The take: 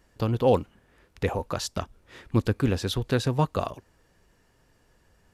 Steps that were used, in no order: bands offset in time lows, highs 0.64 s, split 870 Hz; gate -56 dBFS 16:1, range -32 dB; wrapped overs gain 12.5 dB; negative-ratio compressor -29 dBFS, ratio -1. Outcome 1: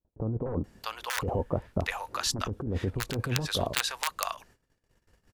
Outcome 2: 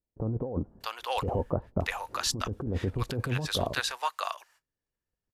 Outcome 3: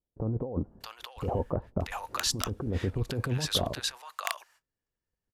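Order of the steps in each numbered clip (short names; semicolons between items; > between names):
wrapped overs > bands offset in time > negative-ratio compressor > gate; gate > bands offset in time > negative-ratio compressor > wrapped overs; gate > negative-ratio compressor > wrapped overs > bands offset in time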